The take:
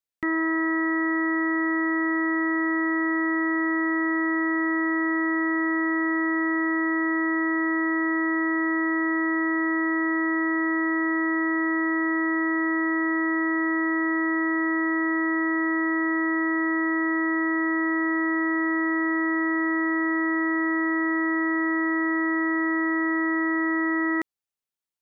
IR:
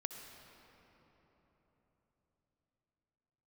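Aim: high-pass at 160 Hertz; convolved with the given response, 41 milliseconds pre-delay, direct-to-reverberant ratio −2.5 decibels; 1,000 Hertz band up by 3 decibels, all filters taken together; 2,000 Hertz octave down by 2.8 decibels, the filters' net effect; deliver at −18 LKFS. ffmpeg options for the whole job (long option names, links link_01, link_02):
-filter_complex "[0:a]highpass=160,equalizer=frequency=1000:width_type=o:gain=5.5,equalizer=frequency=2000:width_type=o:gain=-4,asplit=2[link_01][link_02];[1:a]atrim=start_sample=2205,adelay=41[link_03];[link_02][link_03]afir=irnorm=-1:irlink=0,volume=4dB[link_04];[link_01][link_04]amix=inputs=2:normalize=0,volume=1.5dB"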